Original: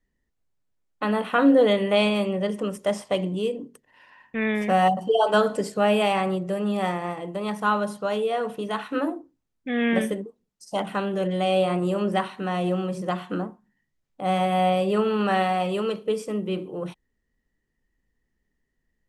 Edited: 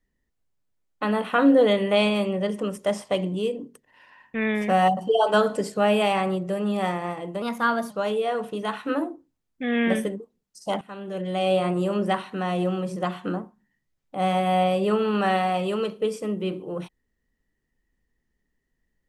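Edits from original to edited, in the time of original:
7.42–7.96 speed 112%
10.87–11.6 fade in, from -19.5 dB

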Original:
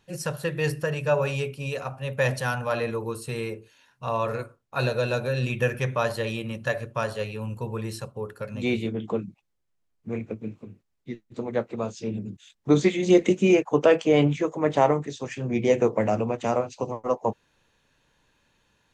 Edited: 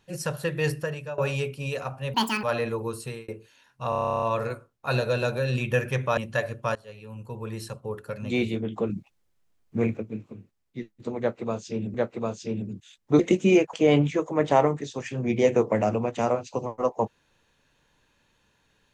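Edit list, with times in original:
0.71–1.18 fade out, to -19 dB
2.14–2.65 speed 174%
3.23–3.5 fade out
4.11 stutter 0.03 s, 12 plays
6.06–6.49 cut
7.07–8.17 fade in, from -21.5 dB
9.21–10.29 gain +6.5 dB
11.51–12.26 loop, 2 plays
12.76–13.17 cut
13.71–13.99 cut

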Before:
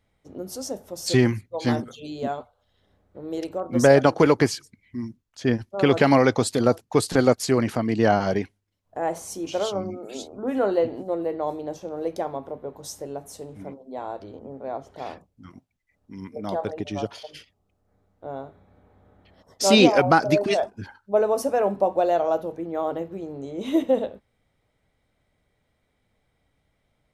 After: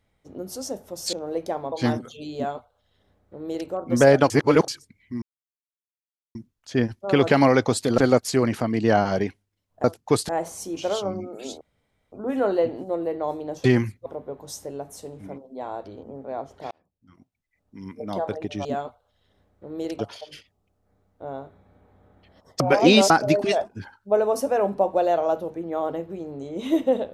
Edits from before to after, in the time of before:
1.13–1.55 swap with 11.83–12.42
2.18–3.52 copy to 17.01
4.13–4.51 reverse
5.05 insert silence 1.13 s
6.68–7.13 move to 8.99
10.31 insert room tone 0.51 s
15.07–16.27 fade in
19.62–20.12 reverse

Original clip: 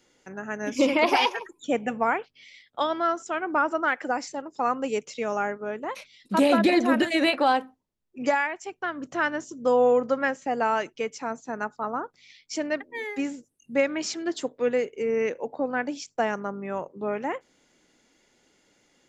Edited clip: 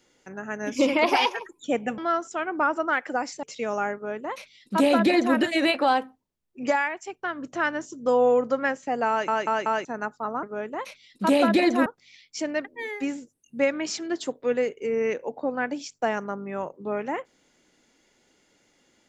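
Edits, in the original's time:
1.98–2.93 cut
4.38–5.02 cut
5.53–6.96 copy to 12.02
10.68 stutter in place 0.19 s, 4 plays

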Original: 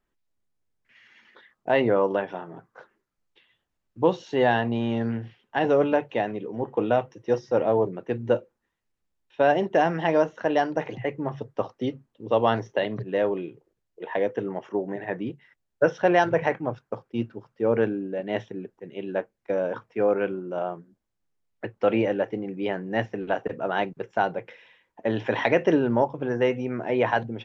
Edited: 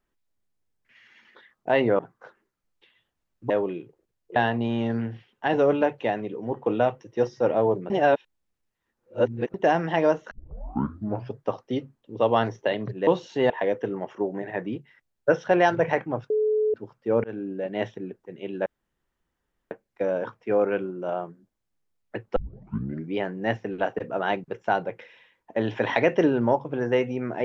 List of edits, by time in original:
1.99–2.53 cut
4.04–4.47 swap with 13.18–14.04
8.01–9.65 reverse
10.42 tape start 1.06 s
16.84–17.28 bleep 429 Hz -19.5 dBFS
17.78–18.13 fade in equal-power
19.2 insert room tone 1.05 s
21.85 tape start 0.78 s

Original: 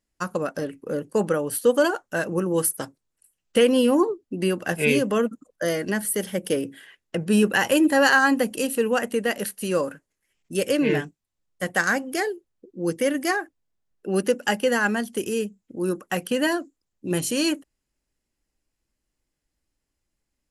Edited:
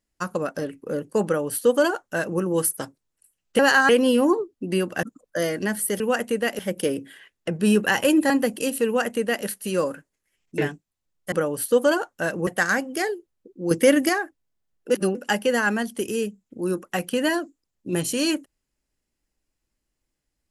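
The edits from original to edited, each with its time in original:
1.25–2.4 copy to 11.65
4.73–5.29 cut
7.97–8.27 move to 3.59
8.83–9.42 copy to 6.26
10.55–10.91 cut
12.89–13.27 gain +6.5 dB
14.08–14.33 reverse

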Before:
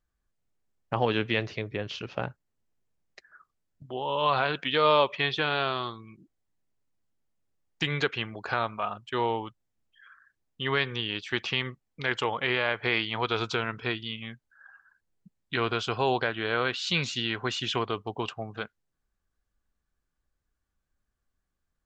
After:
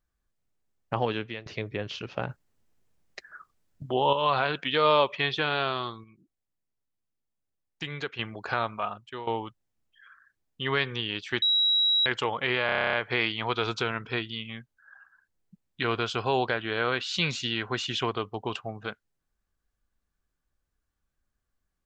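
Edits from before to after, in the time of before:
0.93–1.46 fade out, to -19.5 dB
2.29–4.13 gain +8 dB
6.04–8.19 gain -7 dB
8.84–9.27 fade out, to -15.5 dB
11.42–12.06 bleep 3870 Hz -20 dBFS
12.66 stutter 0.03 s, 10 plays

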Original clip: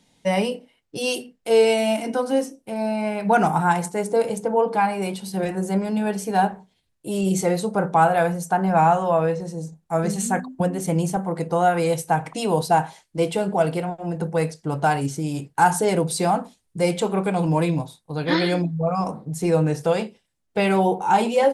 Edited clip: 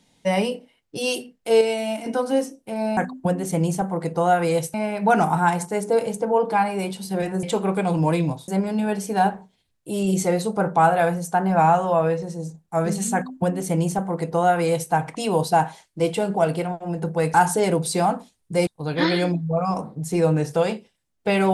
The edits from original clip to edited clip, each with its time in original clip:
1.61–2.06 gain -5 dB
10.32–12.09 copy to 2.97
14.52–15.59 cut
16.92–17.97 move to 5.66

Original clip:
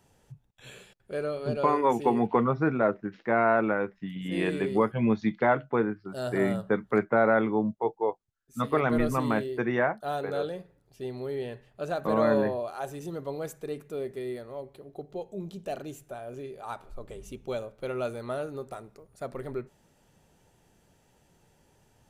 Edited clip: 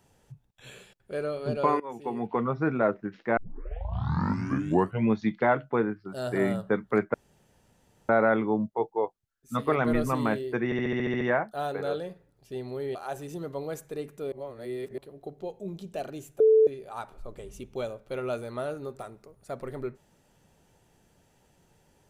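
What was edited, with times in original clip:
1.8–2.79 fade in, from -20 dB
3.37 tape start 1.71 s
7.14 insert room tone 0.95 s
9.7 stutter 0.07 s, 9 plays
11.44–12.67 cut
14.04–14.7 reverse
16.12–16.39 bleep 439 Hz -15 dBFS

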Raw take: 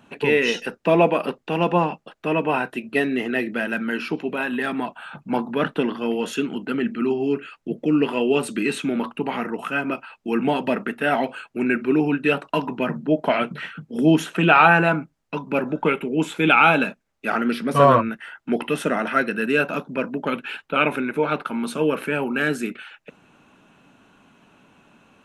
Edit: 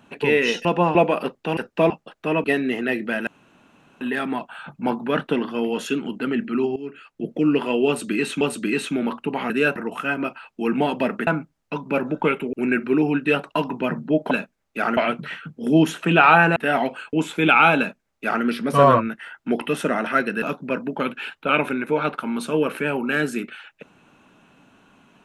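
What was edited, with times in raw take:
0.65–0.98 swap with 1.6–1.9
2.44–2.91 cut
3.74–4.48 room tone
7.23–7.78 fade in, from -16 dB
8.34–8.88 loop, 2 plays
10.94–11.51 swap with 14.88–16.14
16.79–17.45 copy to 13.29
19.43–19.69 move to 9.43

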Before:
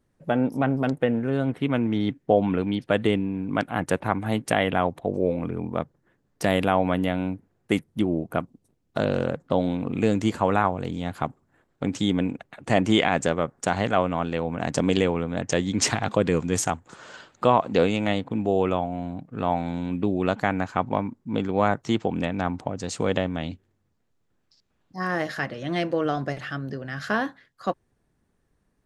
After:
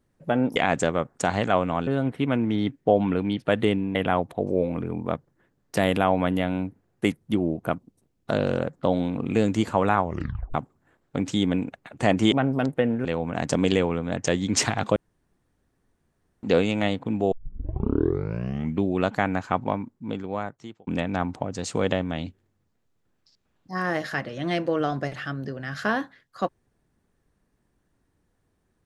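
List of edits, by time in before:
0.56–1.29 swap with 12.99–14.3
3.37–4.62 cut
10.71 tape stop 0.50 s
16.21–17.68 room tone
18.57 tape start 1.55 s
20.79–22.12 fade out

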